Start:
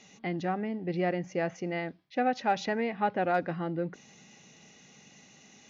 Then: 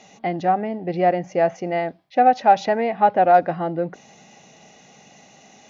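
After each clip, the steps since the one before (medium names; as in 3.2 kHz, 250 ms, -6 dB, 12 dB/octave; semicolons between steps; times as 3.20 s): peaking EQ 700 Hz +11.5 dB 0.88 oct; trim +4.5 dB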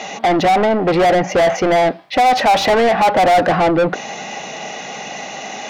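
overdrive pedal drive 34 dB, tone 2.5 kHz, clips at -3.5 dBFS; trim -2 dB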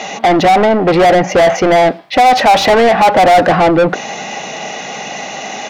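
speakerphone echo 100 ms, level -27 dB; trim +4.5 dB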